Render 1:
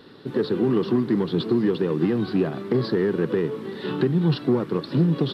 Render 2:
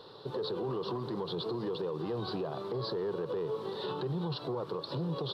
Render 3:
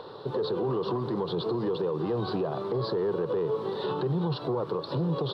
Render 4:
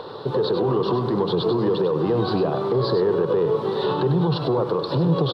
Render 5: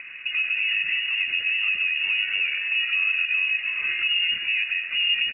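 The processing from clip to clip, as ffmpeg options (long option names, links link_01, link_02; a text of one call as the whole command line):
ffmpeg -i in.wav -af "equalizer=frequency=125:width_type=o:width=1:gain=4,equalizer=frequency=250:width_type=o:width=1:gain=-12,equalizer=frequency=500:width_type=o:width=1:gain=9,equalizer=frequency=1000:width_type=o:width=1:gain=11,equalizer=frequency=2000:width_type=o:width=1:gain=-11,equalizer=frequency=4000:width_type=o:width=1:gain=10,alimiter=limit=-20.5dB:level=0:latency=1:release=73,volume=-7dB" out.wav
ffmpeg -i in.wav -filter_complex "[0:a]highshelf=frequency=3500:gain=-10,acrossover=split=340|1900[link_01][link_02][link_03];[link_02]acompressor=mode=upward:threshold=-46dB:ratio=2.5[link_04];[link_01][link_04][link_03]amix=inputs=3:normalize=0,volume=6.5dB" out.wav
ffmpeg -i in.wav -af "aecho=1:1:99:0.376,volume=7.5dB" out.wav
ffmpeg -i in.wav -af "lowpass=frequency=2600:width_type=q:width=0.5098,lowpass=frequency=2600:width_type=q:width=0.6013,lowpass=frequency=2600:width_type=q:width=0.9,lowpass=frequency=2600:width_type=q:width=2.563,afreqshift=-3000,volume=-3.5dB" out.wav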